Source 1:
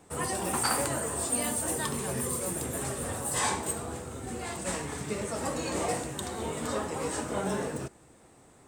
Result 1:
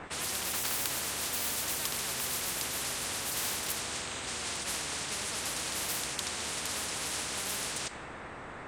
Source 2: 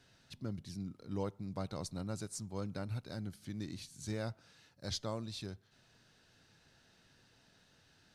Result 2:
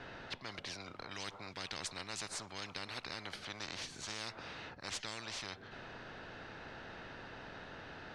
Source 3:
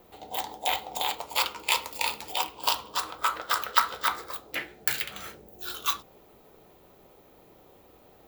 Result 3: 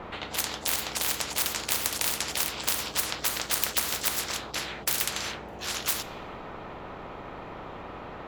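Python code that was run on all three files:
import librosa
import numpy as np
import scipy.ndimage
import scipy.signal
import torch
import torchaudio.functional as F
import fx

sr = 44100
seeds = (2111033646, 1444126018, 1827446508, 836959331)

y = fx.env_lowpass(x, sr, base_hz=1800.0, full_db=-25.0)
y = fx.spectral_comp(y, sr, ratio=10.0)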